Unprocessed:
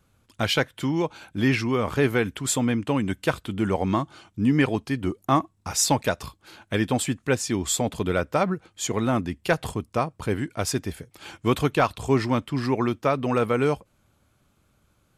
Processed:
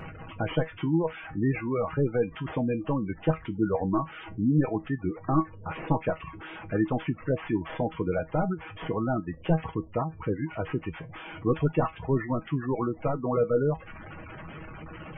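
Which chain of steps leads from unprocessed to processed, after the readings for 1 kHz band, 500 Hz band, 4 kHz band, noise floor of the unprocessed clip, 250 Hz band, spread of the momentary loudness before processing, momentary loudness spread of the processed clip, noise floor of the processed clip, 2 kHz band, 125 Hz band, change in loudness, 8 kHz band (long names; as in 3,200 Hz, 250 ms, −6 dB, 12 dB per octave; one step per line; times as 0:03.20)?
−5.5 dB, −3.0 dB, −16.0 dB, −67 dBFS, −3.5 dB, 7 LU, 14 LU, −47 dBFS, −9.0 dB, −2.0 dB, −4.0 dB, below −40 dB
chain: linear delta modulator 16 kbit/s, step −32.5 dBFS
gate on every frequency bin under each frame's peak −20 dB strong
reverb reduction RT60 0.64 s
tuned comb filter 160 Hz, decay 0.15 s, harmonics all, mix 80%
level +6 dB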